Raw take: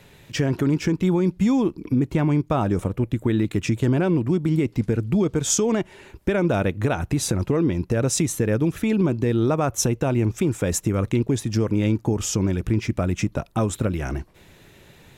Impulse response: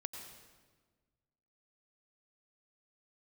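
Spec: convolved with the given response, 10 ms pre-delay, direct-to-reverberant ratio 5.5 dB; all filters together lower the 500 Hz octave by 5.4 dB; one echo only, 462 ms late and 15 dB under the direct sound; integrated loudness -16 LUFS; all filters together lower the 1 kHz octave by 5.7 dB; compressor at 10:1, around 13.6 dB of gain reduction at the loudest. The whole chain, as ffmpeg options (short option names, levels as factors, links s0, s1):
-filter_complex "[0:a]equalizer=f=500:t=o:g=-6.5,equalizer=f=1000:t=o:g=-5.5,acompressor=threshold=0.0251:ratio=10,aecho=1:1:462:0.178,asplit=2[s0][s1];[1:a]atrim=start_sample=2205,adelay=10[s2];[s1][s2]afir=irnorm=-1:irlink=0,volume=0.668[s3];[s0][s3]amix=inputs=2:normalize=0,volume=8.91"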